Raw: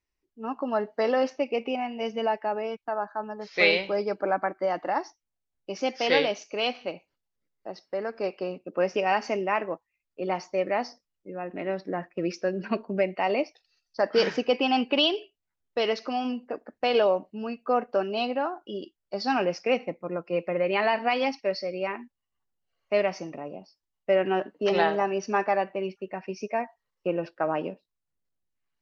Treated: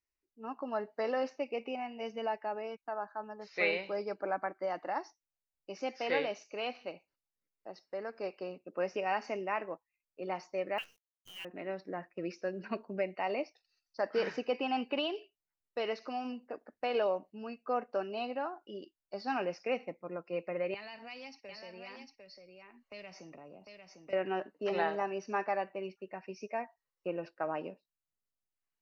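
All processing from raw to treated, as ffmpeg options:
ffmpeg -i in.wav -filter_complex "[0:a]asettb=1/sr,asplit=3[link_01][link_02][link_03];[link_01]atrim=end=10.784[link_04];[link_02]atrim=start=10.78:end=11.45,asetpts=PTS-STARTPTS,afade=type=in:duration=0.004:curve=qsin,afade=type=out:start_time=0.666:duration=0.004:curve=qsin,lowpass=frequency=3000:width_type=q:width=0.5098,lowpass=frequency=3000:width_type=q:width=0.6013,lowpass=frequency=3000:width_type=q:width=0.9,lowpass=frequency=3000:width_type=q:width=2.563,afreqshift=-3500,acrusher=bits=7:dc=4:mix=0:aa=0.000001[link_05];[link_03]atrim=start=11.446[link_06];[link_04][link_05]acrossfade=duration=0.004:curve1=hsin:curve2=qsin[link_07];[link_07][link_06]acrossfade=duration=0.004:curve1=qsin:curve2=hsin,asettb=1/sr,asplit=3[link_08][link_09][link_10];[link_08]atrim=end=20.744[link_11];[link_09]atrim=start=20.74:end=24.13,asetpts=PTS-STARTPTS,afade=type=in:duration=0.004:curve=qsin,afade=type=out:start_time=3.386:duration=0.004:curve=qsin,acrossover=split=150|3000[link_12][link_13][link_14];[link_13]acompressor=threshold=-38dB:ratio=10:attack=3.2:release=140:knee=2.83:detection=peak[link_15];[link_12][link_15][link_14]amix=inputs=3:normalize=0,aecho=1:1:750:0.501,atrim=end_sample=149499[link_16];[link_10]atrim=start=24.126[link_17];[link_11][link_16]acrossfade=duration=0.004:curve1=hsin:curve2=qsin[link_18];[link_18][link_17]acrossfade=duration=0.004:curve1=qsin:curve2=hsin,acrossover=split=3100[link_19][link_20];[link_20]acompressor=threshold=-44dB:ratio=4:attack=1:release=60[link_21];[link_19][link_21]amix=inputs=2:normalize=0,lowshelf=frequency=370:gain=-4,bandreject=frequency=3300:width=6.8,volume=-7.5dB" out.wav

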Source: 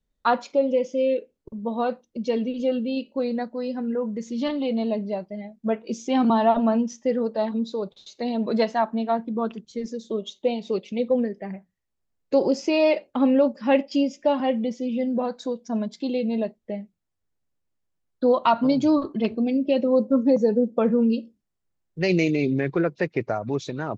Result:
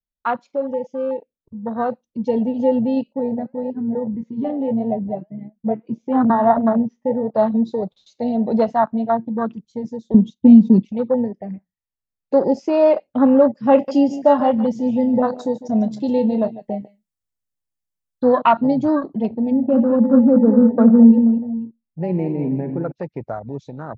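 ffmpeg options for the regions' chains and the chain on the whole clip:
ffmpeg -i in.wav -filter_complex "[0:a]asettb=1/sr,asplit=3[link_01][link_02][link_03];[link_01]atrim=end=3.134[link_04];[link_02]atrim=start=3.13:end=7.34,asetpts=PTS-STARTPTS,afade=type=in:duration=0.004:curve=qsin,afade=type=out:start_time=4.206:duration=0.004:curve=qsin,lowpass=1900,flanger=delay=6.1:depth=5.2:regen=-72:speed=1.7:shape=sinusoidal[link_05];[link_03]atrim=start=7.336[link_06];[link_04][link_05]acrossfade=duration=0.004:curve1=hsin:curve2=qsin[link_07];[link_07][link_06]acrossfade=duration=0.004:curve1=qsin:curve2=hsin,asettb=1/sr,asplit=3[link_08][link_09][link_10];[link_08]atrim=end=10.144[link_11];[link_09]atrim=start=10.14:end=10.89,asetpts=PTS-STARTPTS,afade=type=in:duration=0.004:curve=qsin,afade=type=out:start_time=0.746:duration=0.004:curve=qsin,agate=range=-12dB:threshold=-46dB:ratio=16:release=100:detection=peak,lowshelf=frequency=360:width_type=q:width=3:gain=12.5[link_12];[link_10]atrim=start=10.886[link_13];[link_11][link_12]acrossfade=duration=0.004:curve1=hsin:curve2=qsin[link_14];[link_14][link_13]acrossfade=duration=0.004:curve1=qsin:curve2=hsin,asettb=1/sr,asplit=3[link_15][link_16][link_17];[link_15]atrim=end=13.734[link_18];[link_16]atrim=start=13.73:end=18.42,asetpts=PTS-STARTPTS,afade=type=in:duration=0.004:curve=qsin,afade=type=out:start_time=4.686:duration=0.004:curve=qsin,highshelf=frequency=4600:gain=11.5,asplit=2[link_19][link_20];[link_20]adelay=28,volume=-11.5dB[link_21];[link_19][link_21]amix=inputs=2:normalize=0,atrim=end_sample=206829,aecho=1:1:149:0.211,atrim=end_sample=206829[link_22];[link_17]atrim=start=18.416[link_23];[link_18][link_22]acrossfade=duration=0.004:curve1=hsin:curve2=qsin[link_24];[link_24][link_23]acrossfade=duration=0.004:curve1=qsin:curve2=hsin,asettb=1/sr,asplit=3[link_25][link_26][link_27];[link_25]atrim=end=19.514[link_28];[link_26]atrim=start=19.51:end=22.92,asetpts=PTS-STARTPTS,afade=type=in:duration=0.004:curve=qsin,afade=type=out:start_time=3.406:duration=0.004:curve=qsin,lowpass=1800,equalizer=frequency=230:width_type=o:width=0.23:gain=11.5,aecho=1:1:61|81|120|205|213|480:0.178|0.178|0.141|0.224|0.316|0.141,atrim=end_sample=150381[link_29];[link_27]atrim=start=22.916[link_30];[link_28][link_29]acrossfade=duration=0.004:curve1=hsin:curve2=qsin[link_31];[link_31][link_30]acrossfade=duration=0.004:curve1=qsin:curve2=hsin,afwtdn=0.0447,equalizer=frequency=370:width=2:gain=-6.5,dynaudnorm=framelen=130:gausssize=31:maxgain=11.5dB" out.wav

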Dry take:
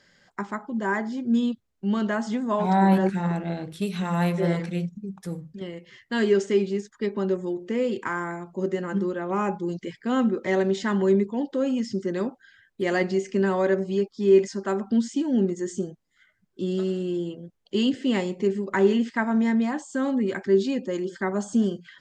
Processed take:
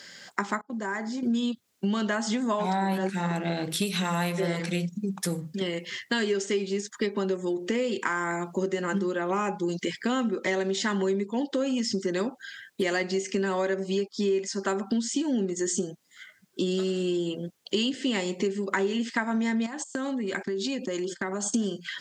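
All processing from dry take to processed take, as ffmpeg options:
ffmpeg -i in.wav -filter_complex "[0:a]asettb=1/sr,asplit=3[link_01][link_02][link_03];[link_01]atrim=end=0.614[link_04];[link_02]atrim=start=0.61:end=1.23,asetpts=PTS-STARTPTS,afade=type=in:duration=0.004:curve=qsin,afade=type=out:start_time=0.616:duration=0.004:curve=qsin,equalizer=frequency=3100:width=3:gain=-8,agate=range=-27dB:threshold=-32dB:ratio=16:release=100:detection=peak,acompressor=threshold=-37dB:ratio=10:attack=3.2:release=140:knee=1:detection=peak[link_05];[link_03]atrim=start=1.226[link_06];[link_04][link_05]acrossfade=duration=0.004:curve1=hsin:curve2=qsin[link_07];[link_07][link_06]acrossfade=duration=0.004:curve1=qsin:curve2=hsin,asettb=1/sr,asplit=3[link_08][link_09][link_10];[link_08]atrim=end=19.664[link_11];[link_09]atrim=start=19.66:end=21.54,asetpts=PTS-STARTPTS,afade=type=in:duration=0.004:curve=qsin,afade=type=out:start_time=1.876:duration=0.004:curve=qsin,agate=range=-20dB:threshold=-40dB:ratio=16:release=100:detection=peak,acompressor=threshold=-34dB:ratio=12:attack=3.2:release=140:knee=1:detection=peak[link_12];[link_10]atrim=start=21.536[link_13];[link_11][link_12]acrossfade=duration=0.004:curve1=hsin:curve2=qsin[link_14];[link_14][link_13]acrossfade=duration=0.004:curve1=qsin:curve2=hsin,highpass=160,highshelf=frequency=2200:gain=11,acompressor=threshold=-33dB:ratio=6,volume=8dB" out.wav

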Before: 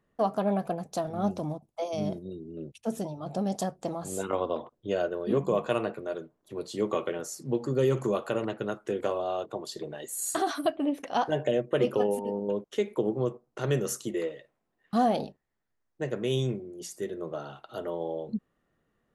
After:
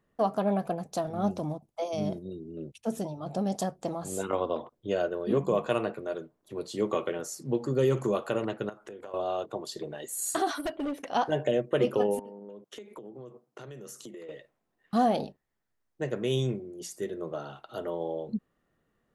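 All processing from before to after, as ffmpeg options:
ffmpeg -i in.wav -filter_complex "[0:a]asettb=1/sr,asplit=3[link_01][link_02][link_03];[link_01]atrim=end=8.694[link_04];[link_02]atrim=start=8.69:end=9.14,asetpts=PTS-STARTPTS,afade=type=in:duration=0.004:curve=qsin,afade=type=out:start_time=0.446:duration=0.004:curve=qsin,equalizer=frequency=920:width=0.74:gain=5.5,acompressor=threshold=-43dB:ratio=4:attack=3.2:release=140:knee=1:detection=peak[link_05];[link_03]atrim=start=9.136[link_06];[link_04][link_05]acrossfade=duration=0.004:curve1=hsin:curve2=qsin[link_07];[link_07][link_06]acrossfade=duration=0.004:curve1=qsin:curve2=hsin,asettb=1/sr,asplit=3[link_08][link_09][link_10];[link_08]atrim=end=10.534[link_11];[link_09]atrim=start=10.53:end=10.98,asetpts=PTS-STARTPTS,afade=type=in:duration=0.004:curve=qsin,afade=type=out:start_time=0.446:duration=0.004:curve=qsin,bandreject=frequency=2500:width=18,aecho=1:1:2.1:0.38,atrim=end_sample=19845,asoftclip=type=hard:threshold=-28dB[link_12];[link_10]atrim=start=10.976[link_13];[link_11][link_12]acrossfade=duration=0.004:curve1=hsin:curve2=qsin[link_14];[link_14][link_13]acrossfade=duration=0.004:curve1=qsin:curve2=hsin,asettb=1/sr,asplit=3[link_15][link_16][link_17];[link_15]atrim=end=12.194[link_18];[link_16]atrim=start=12.19:end=14.29,asetpts=PTS-STARTPTS,afade=type=in:duration=0.004:curve=qsin,afade=type=out:start_time=2.096:duration=0.004:curve=qsin,highpass=frequency=120:width=0.5412,highpass=frequency=120:width=1.3066,acompressor=threshold=-40dB:ratio=16:attack=3.2:release=140:knee=1:detection=peak[link_19];[link_17]atrim=start=14.286[link_20];[link_18][link_19]acrossfade=duration=0.004:curve1=hsin:curve2=qsin[link_21];[link_21][link_20]acrossfade=duration=0.004:curve1=qsin:curve2=hsin" out.wav

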